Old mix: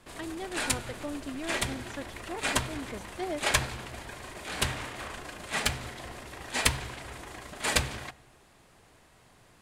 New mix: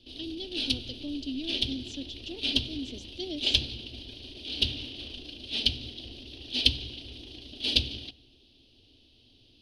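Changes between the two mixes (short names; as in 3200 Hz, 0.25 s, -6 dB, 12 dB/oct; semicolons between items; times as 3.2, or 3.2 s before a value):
background: add running mean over 6 samples; master: add EQ curve 110 Hz 0 dB, 160 Hz -15 dB, 260 Hz +5 dB, 700 Hz -15 dB, 1100 Hz -28 dB, 2000 Hz -21 dB, 3000 Hz +12 dB, 4700 Hz +12 dB, 8500 Hz -3 dB, 13000 Hz -5 dB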